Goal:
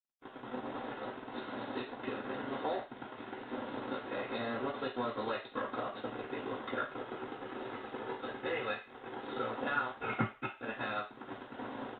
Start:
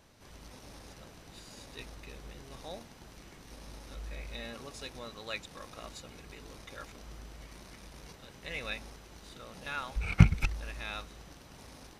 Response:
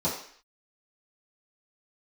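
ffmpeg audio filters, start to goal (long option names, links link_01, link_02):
-filter_complex "[0:a]highpass=280,bandreject=frequency=2300:width=7.6,asettb=1/sr,asplit=3[link_01][link_02][link_03];[link_01]atrim=end=6.834[link_04];[link_02]atrim=start=6.83:end=9.5,asetpts=PTS-STARTPTS,afade=type=in:duration=0.004:curve=qsin,afade=type=out:start_time=2.666:duration=0.004:curve=qsin,aecho=1:1:2.4:0.48,atrim=end_sample=117747[link_05];[link_03]atrim=start=9.496[link_06];[link_04][link_05]acrossfade=duration=0.004:curve1=hsin:curve2=qsin[link_07];[link_07][link_06]acrossfade=duration=0.004:curve1=qsin:curve2=hsin,acompressor=threshold=-48dB:ratio=6,acrusher=bits=7:mix=0:aa=0.5,aresample=8000,aresample=44100[link_08];[1:a]atrim=start_sample=2205,asetrate=66150,aresample=44100[link_09];[link_08][link_09]afir=irnorm=-1:irlink=0,volume=7dB" -ar 48000 -c:a libopus -b:a 48k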